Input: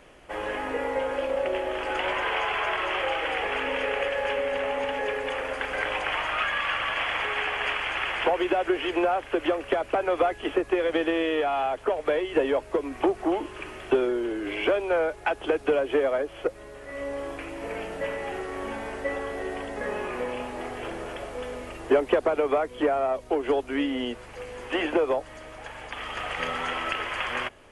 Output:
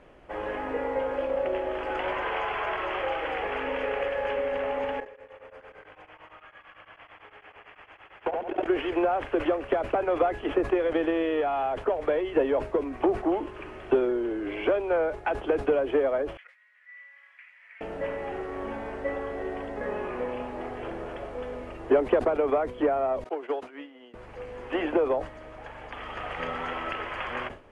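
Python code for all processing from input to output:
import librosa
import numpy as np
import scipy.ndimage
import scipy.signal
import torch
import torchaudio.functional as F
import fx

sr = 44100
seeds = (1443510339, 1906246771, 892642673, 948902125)

y = fx.chain(x, sr, fx.level_steps(step_db=23),
    fx.echo_feedback(ms=70, feedback_pct=51, wet_db=-4.0),
    fx.tremolo_abs(hz=8.9), at=(5.0, 8.66))
y = fx.chain(y, sr, fx.ladder_highpass(hz=1800.0, resonance_pct=70),
    fx.high_shelf(hz=5100.0, db=-8.5), at=(16.37, 17.81))
y = fx.chain(y, sr, fx.weighting(curve='A'),
    fx.upward_expand(threshold_db=-36.0, expansion=2.5), at=(23.24, 24.14))
y = fx.lowpass(y, sr, hz=1300.0, slope=6)
y = fx.sustainer(y, sr, db_per_s=140.0)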